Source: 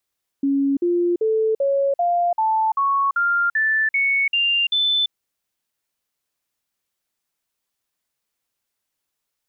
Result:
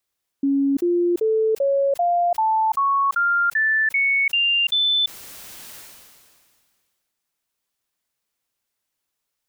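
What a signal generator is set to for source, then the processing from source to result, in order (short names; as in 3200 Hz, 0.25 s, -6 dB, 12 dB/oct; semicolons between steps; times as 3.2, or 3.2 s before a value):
stepped sine 277 Hz up, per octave 3, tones 12, 0.34 s, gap 0.05 s -16 dBFS
sustainer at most 29 dB/s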